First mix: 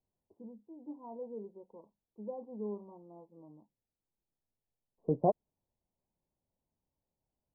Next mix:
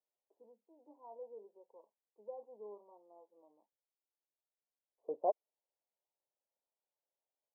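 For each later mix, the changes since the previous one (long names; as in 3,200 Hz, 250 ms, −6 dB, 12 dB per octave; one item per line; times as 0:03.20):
master: add four-pole ladder high-pass 420 Hz, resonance 30%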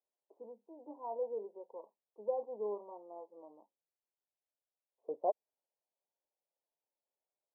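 first voice +11.5 dB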